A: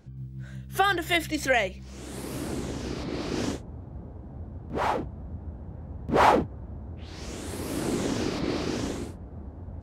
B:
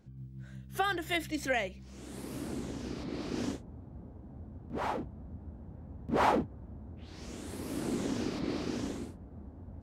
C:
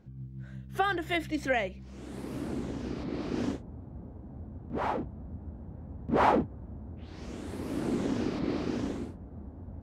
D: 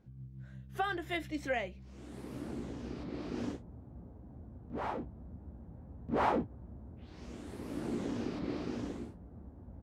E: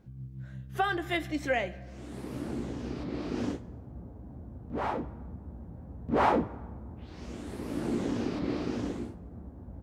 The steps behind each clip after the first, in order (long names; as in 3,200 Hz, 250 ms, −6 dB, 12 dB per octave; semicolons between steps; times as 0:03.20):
parametric band 240 Hz +5 dB 0.71 octaves; level −8 dB
high-shelf EQ 4,200 Hz −11.5 dB; level +3.5 dB
double-tracking delay 17 ms −11 dB; level −6.5 dB
dense smooth reverb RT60 1.6 s, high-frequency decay 0.55×, DRR 16.5 dB; level +5.5 dB